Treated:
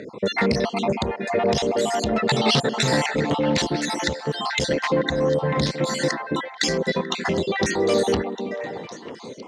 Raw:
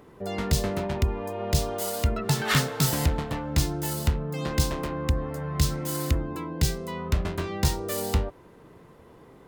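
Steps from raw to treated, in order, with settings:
time-frequency cells dropped at random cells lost 55%
in parallel at +3 dB: downward compressor, threshold −33 dBFS, peak gain reduction 15 dB
on the sum: soft clipping −21 dBFS, distortion −9 dB
loudspeaker in its box 160–6,900 Hz, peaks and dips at 220 Hz +4 dB, 510 Hz +6 dB, 1,200 Hz −4 dB, 1,900 Hz +8 dB, 3,800 Hz +5 dB
echo through a band-pass that steps 315 ms, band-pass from 270 Hz, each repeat 1.4 octaves, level −4 dB
level +7 dB

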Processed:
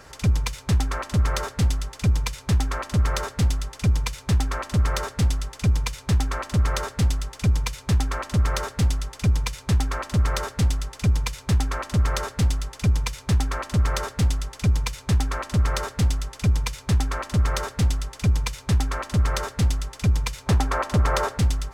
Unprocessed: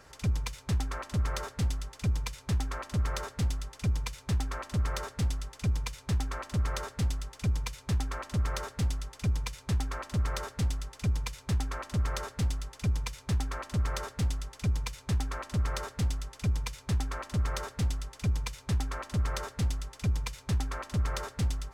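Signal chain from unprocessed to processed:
0:20.46–0:21.38: parametric band 720 Hz +7.5 dB 2.5 octaves
level +8.5 dB

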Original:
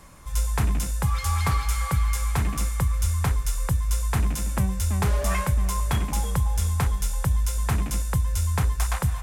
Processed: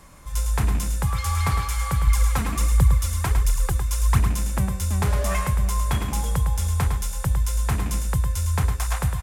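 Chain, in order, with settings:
0:02.07–0:04.19: phase shifter 1.4 Hz, delay 4.5 ms, feedback 59%
single-tap delay 107 ms −7.5 dB

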